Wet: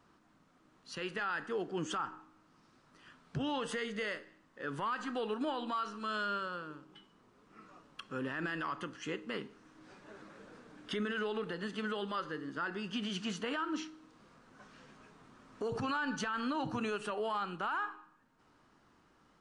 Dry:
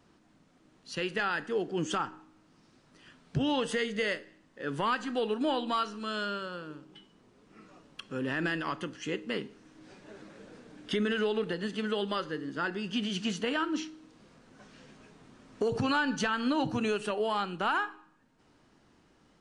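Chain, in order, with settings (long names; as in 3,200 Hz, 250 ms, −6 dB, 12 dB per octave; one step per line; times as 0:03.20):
parametric band 1,200 Hz +8 dB 0.94 octaves
brickwall limiter −22.5 dBFS, peak gain reduction 9.5 dB
level −5 dB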